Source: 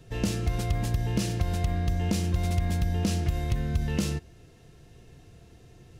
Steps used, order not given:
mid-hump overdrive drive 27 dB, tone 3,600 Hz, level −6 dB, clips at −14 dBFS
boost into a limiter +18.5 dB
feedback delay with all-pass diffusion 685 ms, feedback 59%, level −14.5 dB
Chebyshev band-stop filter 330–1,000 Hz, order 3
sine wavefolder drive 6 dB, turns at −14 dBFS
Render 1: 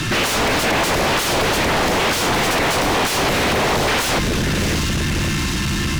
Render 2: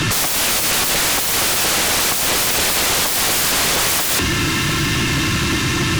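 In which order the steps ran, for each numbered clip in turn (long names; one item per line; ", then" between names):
feedback delay with all-pass diffusion, then boost into a limiter, then Chebyshev band-stop filter, then sine wavefolder, then mid-hump overdrive
Chebyshev band-stop filter, then mid-hump overdrive, then boost into a limiter, then sine wavefolder, then feedback delay with all-pass diffusion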